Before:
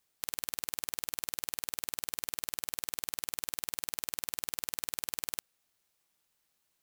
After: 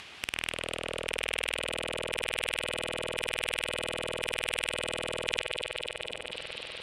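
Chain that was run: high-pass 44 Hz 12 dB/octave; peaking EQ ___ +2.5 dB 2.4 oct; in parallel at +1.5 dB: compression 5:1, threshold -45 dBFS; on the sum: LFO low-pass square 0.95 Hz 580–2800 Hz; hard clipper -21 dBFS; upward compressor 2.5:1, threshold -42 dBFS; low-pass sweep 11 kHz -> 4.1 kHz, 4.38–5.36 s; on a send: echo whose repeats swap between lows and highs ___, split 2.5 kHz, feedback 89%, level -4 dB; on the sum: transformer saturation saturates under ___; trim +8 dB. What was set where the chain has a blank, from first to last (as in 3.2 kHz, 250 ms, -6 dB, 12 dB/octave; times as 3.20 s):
5.9 kHz, 124 ms, 2.3 kHz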